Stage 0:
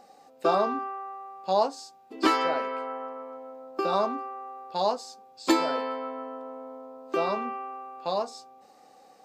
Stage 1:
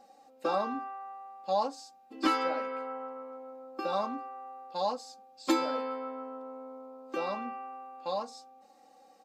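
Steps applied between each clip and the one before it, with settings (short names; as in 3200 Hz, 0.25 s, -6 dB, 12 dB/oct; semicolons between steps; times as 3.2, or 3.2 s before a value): comb 3.7 ms, depth 78%; gain -7.5 dB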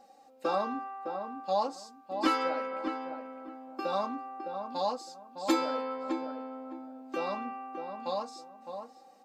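darkening echo 0.61 s, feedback 22%, low-pass 1500 Hz, level -6.5 dB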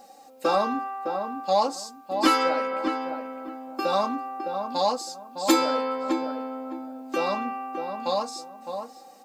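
high shelf 6400 Hz +11 dB; in parallel at -11 dB: soft clip -27 dBFS, distortion -11 dB; on the sum: gain +5.5 dB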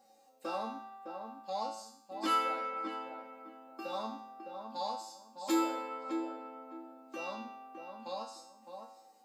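HPF 40 Hz; resonator 110 Hz, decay 0.63 s, harmonics all, mix 90%; gain -2 dB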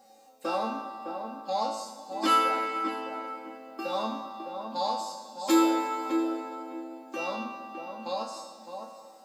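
plate-style reverb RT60 3 s, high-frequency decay 1×, DRR 8.5 dB; gain +7.5 dB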